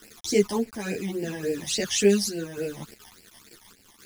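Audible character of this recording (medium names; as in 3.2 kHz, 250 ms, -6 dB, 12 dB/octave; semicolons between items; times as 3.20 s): a quantiser's noise floor 8-bit, dither none; phasing stages 12, 3.5 Hz, lowest notch 420–1200 Hz; random-step tremolo 3.5 Hz; a shimmering, thickened sound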